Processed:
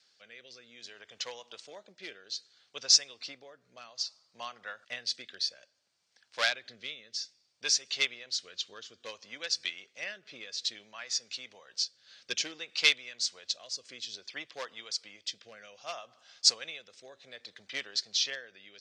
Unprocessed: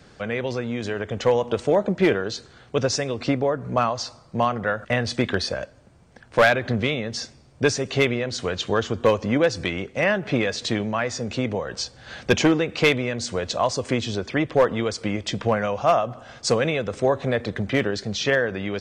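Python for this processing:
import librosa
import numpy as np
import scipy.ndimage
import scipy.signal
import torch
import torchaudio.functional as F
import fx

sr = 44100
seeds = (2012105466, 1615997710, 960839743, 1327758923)

y = fx.bandpass_q(x, sr, hz=4800.0, q=1.9)
y = fx.rotary(y, sr, hz=0.6)
y = fx.upward_expand(y, sr, threshold_db=-45.0, expansion=1.5)
y = F.gain(torch.from_numpy(y), 8.0).numpy()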